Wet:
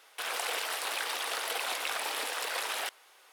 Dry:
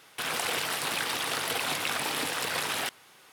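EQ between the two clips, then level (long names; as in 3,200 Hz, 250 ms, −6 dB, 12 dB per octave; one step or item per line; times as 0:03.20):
four-pole ladder high-pass 370 Hz, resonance 20%
+1.5 dB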